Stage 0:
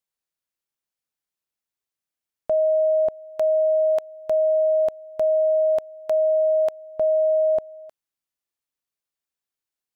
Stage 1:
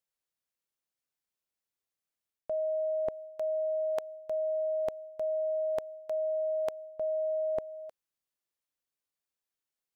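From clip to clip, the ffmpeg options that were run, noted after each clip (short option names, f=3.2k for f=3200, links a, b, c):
-af "equalizer=f=520:t=o:w=0.35:g=3,areverse,acompressor=threshold=-28dB:ratio=5,areverse,volume=-3dB"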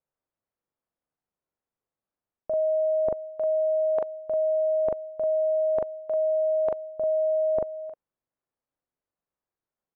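-filter_complex "[0:a]lowpass=1.1k,asplit=2[a][b];[b]adelay=41,volume=-2dB[c];[a][c]amix=inputs=2:normalize=0,volume=5.5dB"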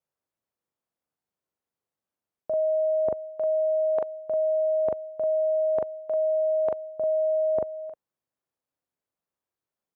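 -af "highpass=63"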